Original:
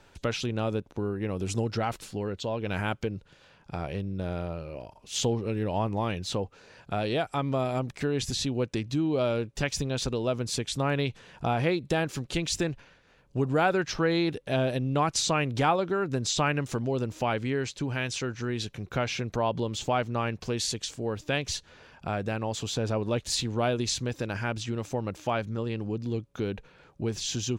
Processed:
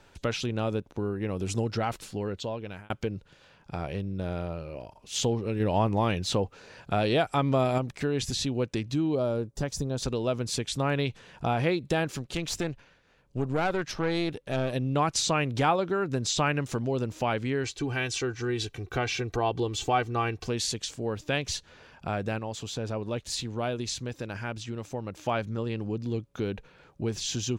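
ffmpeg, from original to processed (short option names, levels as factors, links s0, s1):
-filter_complex "[0:a]asettb=1/sr,asplit=3[s0][s1][s2];[s0]atrim=end=9.154[s3];[s1]atrim=start=9.15:end=10.03,asetpts=PTS-STARTPTS,afade=t=in:d=0.004:c=qsin,afade=t=out:st=0.876:d=0.004:c=qsin,equalizer=f=2500:w=1:g=-14.5[s4];[s2]atrim=start=10.026[s5];[s3][s4]acrossfade=d=0.004:c1=hsin:c2=qsin[s6];[s6][s5]acrossfade=d=0.004:c1=qsin:c2=hsin,asettb=1/sr,asplit=3[s7][s8][s9];[s7]atrim=end=12.174[s10];[s8]atrim=start=12.17:end=14.73,asetpts=PTS-STARTPTS,afade=t=in:d=0.004:c=qsin,afade=t=out:st=2.556:d=0.004:c=qsin,aeval=exprs='(tanh(10*val(0)+0.6)-tanh(0.6))/10':c=same[s11];[s9]atrim=start=14.726[s12];[s10][s11]acrossfade=d=0.004:c1=hsin:c2=qsin[s13];[s13][s12]acrossfade=d=0.004:c1=qsin:c2=hsin,asettb=1/sr,asplit=3[s14][s15][s16];[s14]atrim=end=17.644[s17];[s15]atrim=start=17.64:end=20.47,asetpts=PTS-STARTPTS,afade=t=in:d=0.004:c=qsin,afade=t=out:st=2.826:d=0.004:c=qsin,aecho=1:1:2.6:0.65,atrim=end_sample=124803[s18];[s16]atrim=start=20.466[s19];[s17][s18]acrossfade=d=0.004:c1=hsin:c2=qsin[s20];[s20][s19]acrossfade=d=0.004:c1=qsin:c2=hsin,asplit=6[s21][s22][s23][s24][s25][s26];[s21]atrim=end=2.9,asetpts=PTS-STARTPTS,afade=t=out:st=2.38:d=0.52[s27];[s22]atrim=start=2.9:end=5.602,asetpts=PTS-STARTPTS,afade=t=in:d=0.004:c=hsin[s28];[s23]atrim=start=5.598:end=7.782,asetpts=PTS-STARTPTS,volume=1.5[s29];[s24]atrim=start=7.778:end=22.392[s30];[s25]atrim=start=22.388:end=25.172,asetpts=PTS-STARTPTS,volume=0.631[s31];[s26]atrim=start=25.168[s32];[s27][s28]concat=n=2:v=0:a=1[s33];[s33][s29]acrossfade=d=0.004:c1=hsin:c2=hsin[s34];[s34][s30]acrossfade=d=0.004:c1=hsin:c2=hsin[s35];[s35][s31]acrossfade=d=0.004:c1=hsin:c2=hsin[s36];[s36][s32]acrossfade=d=0.004:c1=hsin:c2=hsin"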